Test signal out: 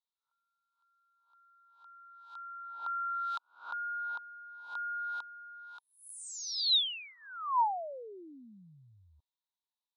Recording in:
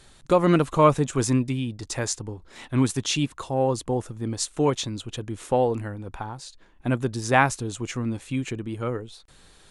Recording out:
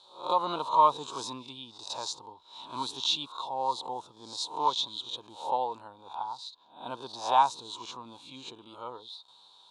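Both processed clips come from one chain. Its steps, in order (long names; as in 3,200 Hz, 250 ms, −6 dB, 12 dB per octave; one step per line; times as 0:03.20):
peak hold with a rise ahead of every peak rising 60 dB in 0.41 s
pair of resonant band-passes 1,900 Hz, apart 2 octaves
level +5 dB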